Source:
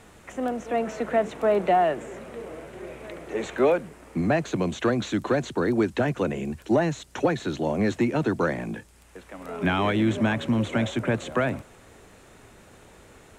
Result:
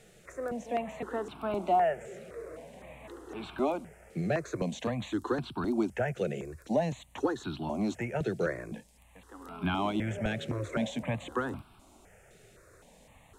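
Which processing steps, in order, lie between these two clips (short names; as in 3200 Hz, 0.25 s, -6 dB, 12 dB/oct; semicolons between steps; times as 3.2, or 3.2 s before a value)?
step phaser 3.9 Hz 270–1900 Hz; gain -4 dB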